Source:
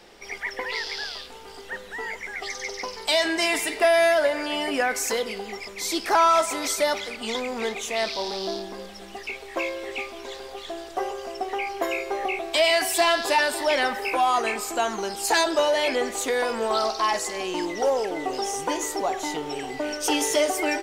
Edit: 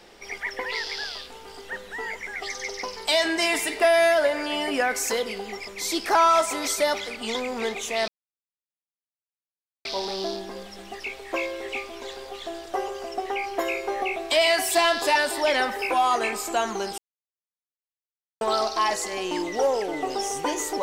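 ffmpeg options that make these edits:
-filter_complex "[0:a]asplit=4[a][b][c][d];[a]atrim=end=8.08,asetpts=PTS-STARTPTS,afade=t=out:st=8.076:d=0.004:c=hsin,apad=pad_dur=1.77[e];[b]atrim=start=8.08:end=15.21,asetpts=PTS-STARTPTS,afade=t=in:d=0.004:c=hsin,afade=t=out:st=7.126:d=0.004:c=hsin[f];[c]atrim=start=15.21:end=16.64,asetpts=PTS-STARTPTS,volume=0[g];[d]atrim=start=16.64,asetpts=PTS-STARTPTS,afade=t=in:d=0.004:c=hsin[h];[e][f][g][h]concat=n=4:v=0:a=1"

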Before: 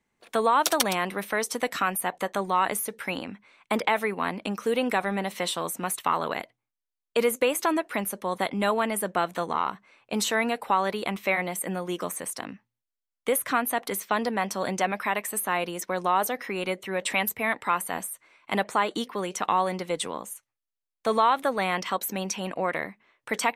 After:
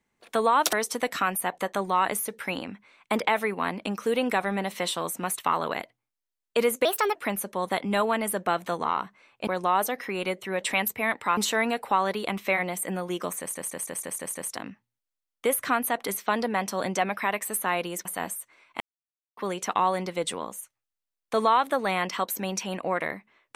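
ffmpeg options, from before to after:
-filter_complex "[0:a]asplit=15[a][b][c][d][e][f][g][h][i][j][k][l][m][n][o];[a]atrim=end=0.732[p];[b]atrim=start=1.328:end=7.454[q];[c]atrim=start=7.45:end=7.84,asetpts=PTS-STARTPTS,asetrate=56889,aresample=44100[r];[d]atrim=start=7.836:end=10.162[s];[e]atrim=start=15.878:end=17.782[t];[f]atrim=start=10.158:end=12.342[u];[g]atrim=start=12.178:end=12.342[v];[h]atrim=start=12.178:end=12.342[w];[i]atrim=start=12.178:end=12.342[x];[j]atrim=start=12.178:end=12.342[y];[k]atrim=start=12.178:end=12.342[z];[l]atrim=start=12.178:end=15.882[aa];[m]atrim=start=17.778:end=18.53,asetpts=PTS-STARTPTS,afade=t=out:st=0.748:d=0.004:c=hsin[ab];[n]atrim=start=18.53:end=19.1,asetpts=PTS-STARTPTS,volume=0[ac];[o]atrim=start=19.1,asetpts=PTS-STARTPTS,afade=t=in:d=0.004:c=hsin[ad];[p][q]acrossfade=d=0.004:c1=hsin:c2=hsin[ae];[ae][r]acrossfade=d=0.004:c1=hsin:c2=hsin[af];[af][s]acrossfade=d=0.004:c1=hsin:c2=hsin[ag];[ag][t]acrossfade=d=0.004:c1=hsin:c2=hsin[ah];[ah][u]acrossfade=d=0.004:c1=hsin:c2=hsin[ai];[ai][v]acrossfade=d=0.004:c1=hsin:c2=hsin[aj];[aj][w]acrossfade=d=0.004:c1=hsin:c2=hsin[ak];[ak][x]acrossfade=d=0.004:c1=hsin:c2=hsin[al];[al][y]acrossfade=d=0.004:c1=hsin:c2=hsin[am];[am][z]acrossfade=d=0.004:c1=hsin:c2=hsin[an];[an][aa]acrossfade=d=0.004:c1=hsin:c2=hsin[ao];[ab][ac][ad]concat=n=3:v=0:a=1[ap];[ao][ap]acrossfade=d=0.004:c1=hsin:c2=hsin"

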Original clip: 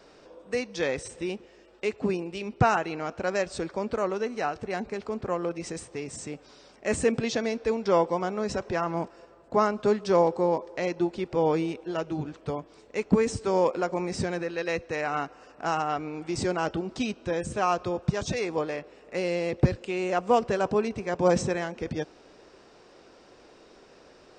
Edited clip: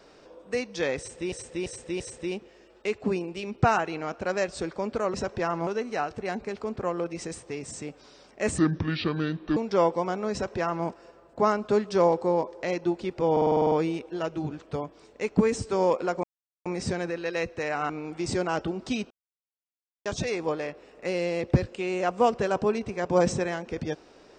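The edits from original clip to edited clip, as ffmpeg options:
-filter_complex "[0:a]asplit=20[a][b][c][d][e][f][g][h][i][j][k][l][m][n][o][p][q][r][s][t];[a]atrim=end=1.322[u];[b]atrim=start=0.978:end=1.322[v];[c]atrim=start=0.978:end=1.322[w];[d]atrim=start=0.978:end=4.122[x];[e]atrim=start=8.468:end=9.002[y];[f]atrim=start=4.118:end=7.034[z];[g]atrim=start=7.03:end=7.71,asetpts=PTS-STARTPTS,asetrate=30429,aresample=44100[aa];[h]atrim=start=7.706:end=11.512[ab];[i]atrim=start=11.458:end=11.512[ac];[j]atrim=start=11.458:end=11.512[ad];[k]atrim=start=11.458:end=11.512[ae];[l]atrim=start=11.458:end=11.512[af];[m]atrim=start=11.458:end=11.512[ag];[n]atrim=start=11.458:end=11.512[ah];[o]atrim=start=11.458:end=11.512[ai];[p]atrim=start=11.458:end=13.98,asetpts=PTS-STARTPTS,afade=t=out:st=2.518:d=0.004:c=hsin,apad=pad_dur=0.42[aj];[q]atrim=start=13.98:end=15.222,asetpts=PTS-STARTPTS,afade=t=in:d=0.004:c=hsin[ak];[r]atrim=start=15.988:end=17.2,asetpts=PTS-STARTPTS,afade=t=out:st=1.208:d=0.004:c=hsin[al];[s]atrim=start=17.2:end=18.15,asetpts=PTS-STARTPTS,volume=0[am];[t]atrim=start=18.15,asetpts=PTS-STARTPTS,afade=t=in:d=0.004:c=hsin[an];[u][v]acrossfade=d=0.004:c1=hsin:c2=hsin[ao];[ao][w]acrossfade=d=0.004:c1=hsin:c2=hsin[ap];[ap][x]acrossfade=d=0.004:c1=hsin:c2=hsin[aq];[aq][y]acrossfade=d=0.004:c1=hsin:c2=hsin[ar];[ar][z]acrossfade=d=0.004:c1=hsin:c2=hsin[as];[as][aa]acrossfade=d=0.004:c1=hsin:c2=hsin[at];[at][ab]acrossfade=d=0.004:c1=hsin:c2=hsin[au];[au][ac]acrossfade=d=0.004:c1=hsin:c2=hsin[av];[av][ad]acrossfade=d=0.004:c1=hsin:c2=hsin[aw];[aw][ae]acrossfade=d=0.004:c1=hsin:c2=hsin[ax];[ax][af]acrossfade=d=0.004:c1=hsin:c2=hsin[ay];[ay][ag]acrossfade=d=0.004:c1=hsin:c2=hsin[az];[az][ah]acrossfade=d=0.004:c1=hsin:c2=hsin[ba];[ba][ai]acrossfade=d=0.004:c1=hsin:c2=hsin[bb];[aj][ak]concat=n=2:v=0:a=1[bc];[bb][bc]acrossfade=d=0.004:c1=hsin:c2=hsin[bd];[al][am][an]concat=n=3:v=0:a=1[be];[bd][be]acrossfade=d=0.004:c1=hsin:c2=hsin"

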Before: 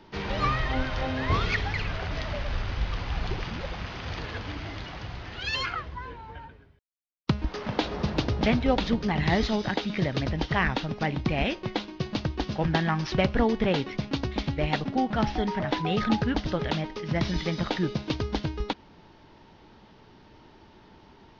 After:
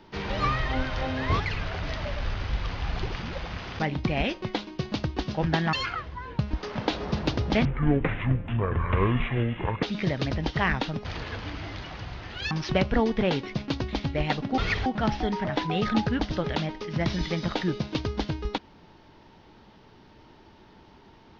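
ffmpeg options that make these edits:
-filter_complex "[0:a]asplit=11[a][b][c][d][e][f][g][h][i][j][k];[a]atrim=end=1.402[l];[b]atrim=start=1.678:end=4.072[m];[c]atrim=start=10.998:end=12.942[n];[d]atrim=start=5.528:end=6.192[o];[e]atrim=start=7.298:end=8.564[p];[f]atrim=start=8.56:end=9.78,asetpts=PTS-STARTPTS,asetrate=24696,aresample=44100[q];[g]atrim=start=9.776:end=11.002[r];[h]atrim=start=4.068:end=5.532[s];[i]atrim=start=12.938:end=15.012[t];[j]atrim=start=1.398:end=1.682[u];[k]atrim=start=15.008[v];[l][m]acrossfade=d=0.004:c1=hsin:c2=hsin[w];[w][n]acrossfade=d=0.004:c1=hsin:c2=hsin[x];[x][o]acrossfade=d=0.004:c1=hsin:c2=hsin[y];[y][p]acrossfade=d=0.004:c1=hsin:c2=hsin[z];[z][q]acrossfade=d=0.004:c1=hsin:c2=hsin[aa];[aa][r]acrossfade=d=0.004:c1=hsin:c2=hsin[ab];[ab][s]acrossfade=d=0.004:c1=hsin:c2=hsin[ac];[ac][t]acrossfade=d=0.004:c1=hsin:c2=hsin[ad];[ad][u]acrossfade=d=0.004:c1=hsin:c2=hsin[ae];[ae][v]acrossfade=d=0.004:c1=hsin:c2=hsin"

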